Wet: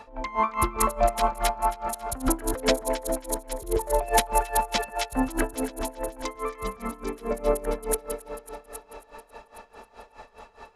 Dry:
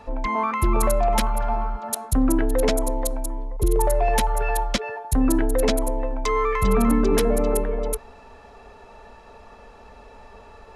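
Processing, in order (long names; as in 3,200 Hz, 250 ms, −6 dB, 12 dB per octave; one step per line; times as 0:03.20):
low-shelf EQ 330 Hz −10.5 dB
0:05.52–0:07.31: output level in coarse steps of 17 dB
on a send: delay that swaps between a low-pass and a high-pass 136 ms, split 1,300 Hz, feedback 78%, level −4.5 dB
on the sum: tremolo with a sine in dB 4.8 Hz, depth 19 dB
level +4 dB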